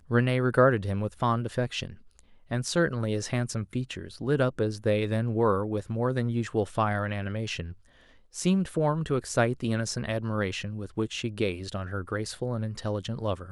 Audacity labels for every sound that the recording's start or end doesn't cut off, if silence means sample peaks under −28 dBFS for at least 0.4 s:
2.510000	7.610000	sound